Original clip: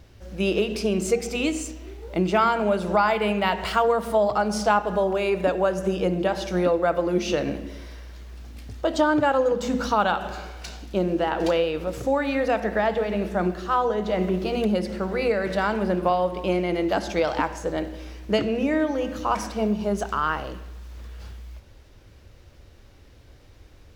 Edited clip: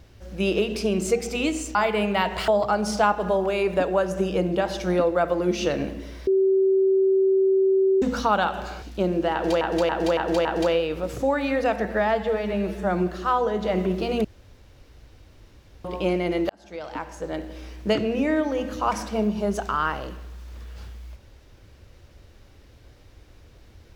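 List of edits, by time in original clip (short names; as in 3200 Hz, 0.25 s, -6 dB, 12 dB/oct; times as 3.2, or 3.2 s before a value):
1.75–3.02 cut
3.75–4.15 cut
7.94–9.69 bleep 384 Hz -16 dBFS
10.49–10.78 cut
11.29–11.57 loop, 5 plays
12.69–13.5 stretch 1.5×
14.68–16.28 room tone
16.93–18.16 fade in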